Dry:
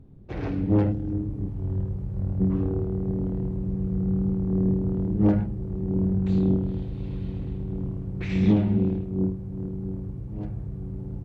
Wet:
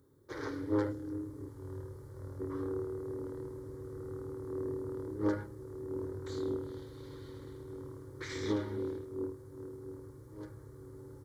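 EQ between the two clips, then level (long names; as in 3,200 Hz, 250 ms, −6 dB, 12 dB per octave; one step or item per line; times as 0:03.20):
high-pass filter 84 Hz
spectral tilt +3.5 dB per octave
phaser with its sweep stopped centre 710 Hz, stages 6
0.0 dB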